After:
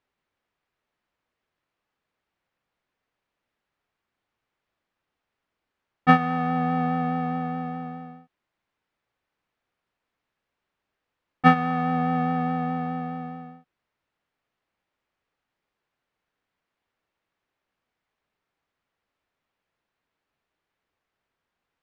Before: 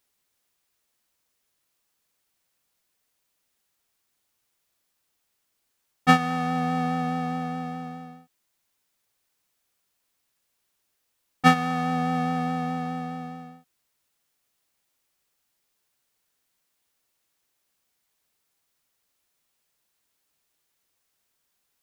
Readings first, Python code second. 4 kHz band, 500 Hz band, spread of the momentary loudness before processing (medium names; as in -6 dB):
-6.5 dB, +1.5 dB, 16 LU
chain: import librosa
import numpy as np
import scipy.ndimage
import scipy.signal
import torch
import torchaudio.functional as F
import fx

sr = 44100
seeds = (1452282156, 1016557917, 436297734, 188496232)

y = scipy.signal.sosfilt(scipy.signal.butter(2, 2200.0, 'lowpass', fs=sr, output='sos'), x)
y = y * 10.0 ** (1.5 / 20.0)